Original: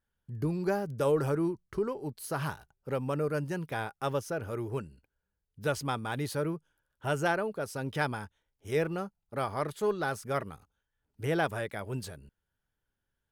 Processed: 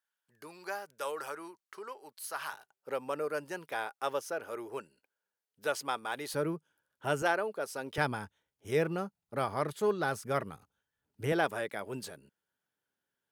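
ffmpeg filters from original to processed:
-af "asetnsamples=n=441:p=0,asendcmd='2.53 highpass f 460;6.34 highpass f 170;7.22 highpass f 360;7.98 highpass f 110;11.32 highpass f 230',highpass=960"

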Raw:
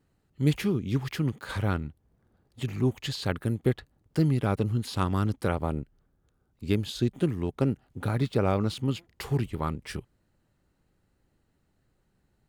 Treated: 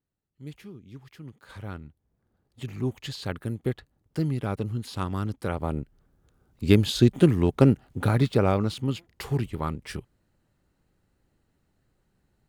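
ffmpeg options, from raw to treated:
-af "volume=2.51,afade=t=in:st=1.15:d=0.53:silence=0.446684,afade=t=in:st=1.68:d=1.19:silence=0.446684,afade=t=in:st=5.44:d=1.24:silence=0.281838,afade=t=out:st=7.67:d=1.04:silence=0.421697"

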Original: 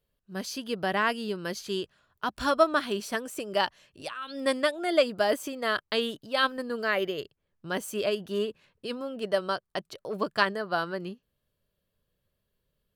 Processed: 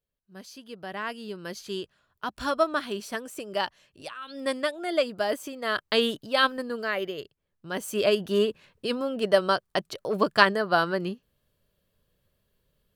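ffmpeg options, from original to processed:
-af "volume=4.73,afade=t=in:st=0.82:d=0.89:silence=0.398107,afade=t=in:st=5.63:d=0.42:silence=0.421697,afade=t=out:st=6.05:d=0.86:silence=0.421697,afade=t=in:st=7.71:d=0.42:silence=0.398107"

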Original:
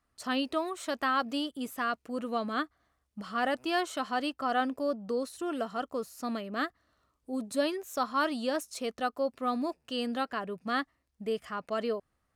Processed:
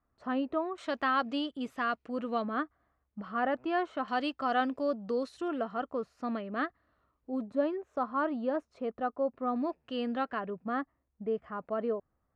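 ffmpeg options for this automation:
-af "asetnsamples=n=441:p=0,asendcmd='0.78 lowpass f 3500;2.42 lowpass f 1700;4.08 lowpass f 4300;5.48 lowpass f 2200;7.48 lowpass f 1200;9.56 lowpass f 2300;10.5 lowpass f 1200',lowpass=1300"

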